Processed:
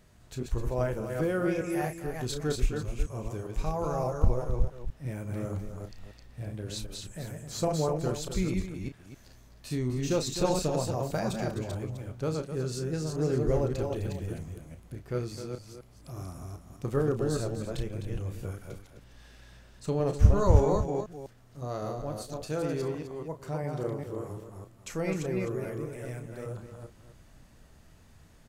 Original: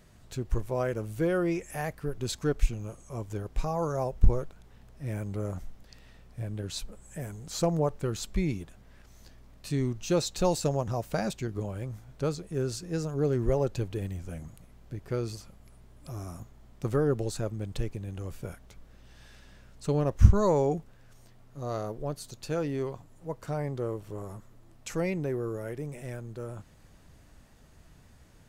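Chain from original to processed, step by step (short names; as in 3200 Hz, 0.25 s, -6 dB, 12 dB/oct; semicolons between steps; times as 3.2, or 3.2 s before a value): reverse delay 0.202 s, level -3 dB; loudspeakers at several distances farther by 11 m -9 dB, 88 m -10 dB; gain -2.5 dB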